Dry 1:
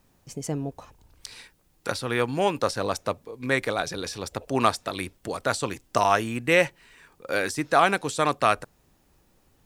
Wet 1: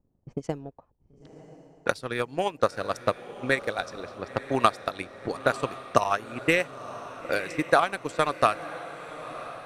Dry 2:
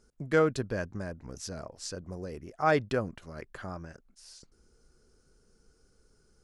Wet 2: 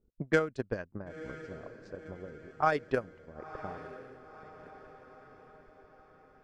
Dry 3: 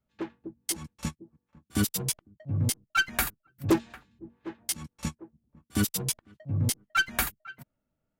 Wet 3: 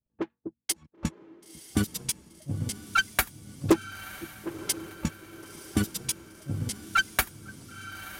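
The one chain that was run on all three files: harmonic-percussive split harmonic -3 dB; transient shaper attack +11 dB, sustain -9 dB; level-controlled noise filter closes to 500 Hz, open at -19.5 dBFS; on a send: echo that smears into a reverb 991 ms, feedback 52%, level -14 dB; on the sum: trim -6.5 dB

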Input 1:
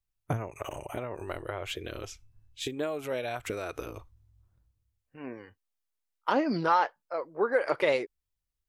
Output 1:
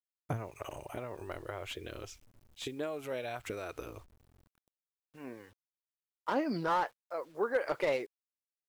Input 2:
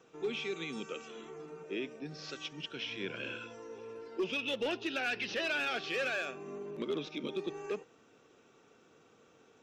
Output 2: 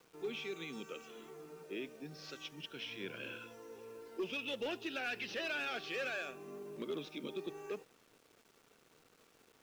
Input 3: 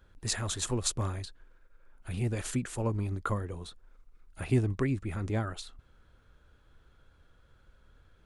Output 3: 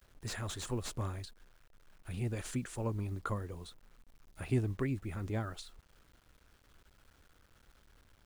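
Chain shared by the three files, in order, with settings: word length cut 10-bit, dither none; slew-rate limiter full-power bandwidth 100 Hz; trim -5 dB

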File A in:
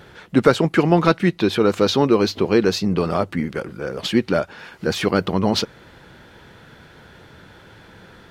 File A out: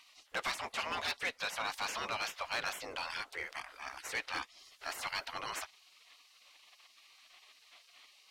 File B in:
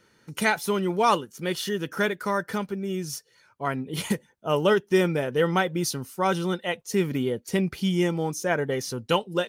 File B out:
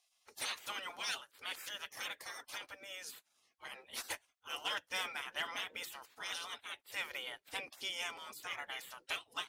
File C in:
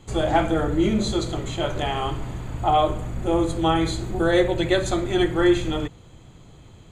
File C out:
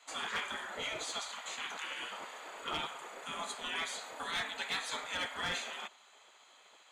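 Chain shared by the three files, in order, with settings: spectral gate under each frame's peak -20 dB weak; overload inside the chain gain 27.5 dB; overdrive pedal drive 10 dB, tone 6 kHz, clips at -16 dBFS; trim -6.5 dB

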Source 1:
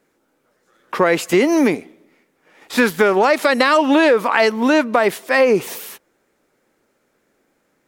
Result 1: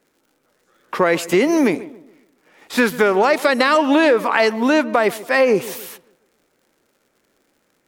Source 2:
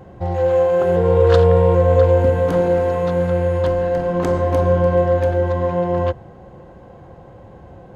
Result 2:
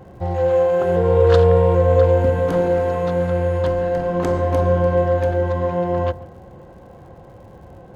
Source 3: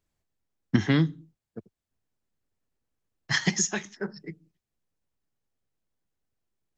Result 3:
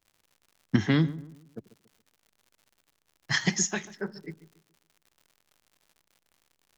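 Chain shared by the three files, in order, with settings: crackle 130 per s -47 dBFS; on a send: filtered feedback delay 140 ms, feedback 39%, low-pass 1.2 kHz, level -16.5 dB; on the sum: trim -1 dB

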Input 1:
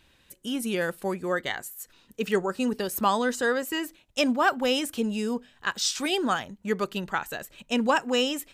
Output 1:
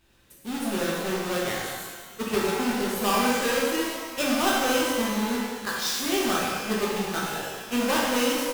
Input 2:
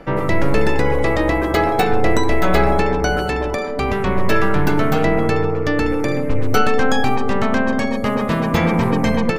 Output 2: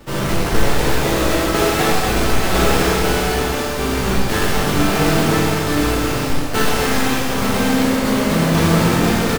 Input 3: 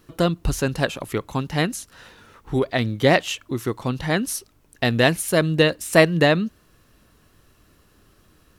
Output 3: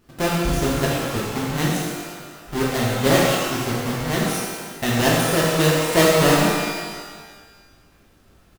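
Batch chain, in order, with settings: square wave that keeps the level; echo from a far wall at 120 m, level -28 dB; pitch-shifted reverb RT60 1.4 s, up +12 st, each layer -8 dB, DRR -5 dB; trim -9.5 dB

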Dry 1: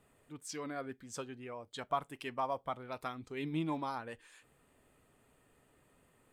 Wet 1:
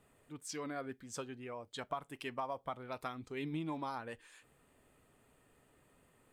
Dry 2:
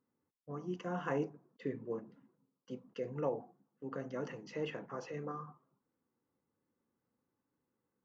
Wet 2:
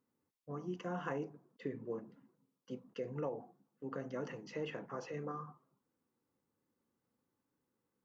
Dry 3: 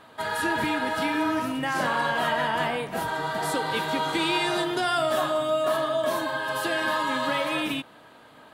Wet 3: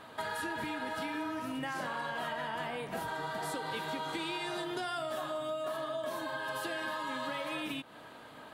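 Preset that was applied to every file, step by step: compression 6:1, threshold -35 dBFS

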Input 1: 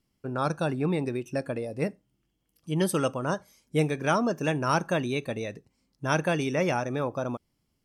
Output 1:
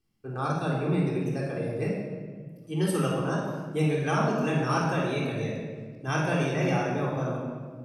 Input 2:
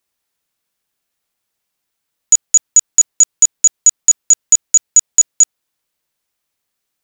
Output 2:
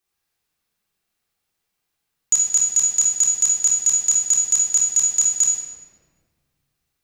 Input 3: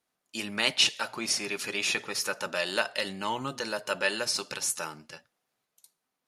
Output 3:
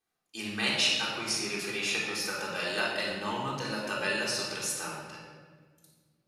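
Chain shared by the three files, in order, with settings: simulated room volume 1900 m³, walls mixed, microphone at 3.7 m; trim -7 dB

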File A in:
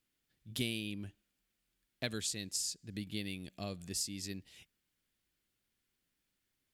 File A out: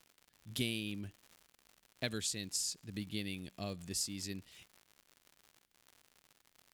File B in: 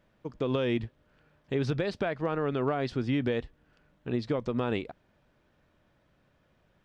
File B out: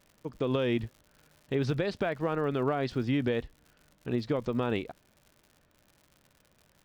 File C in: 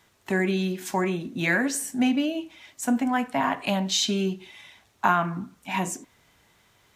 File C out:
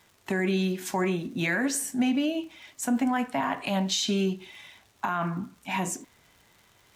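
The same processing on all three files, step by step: crackle 130 per s -46 dBFS; peak limiter -17.5 dBFS

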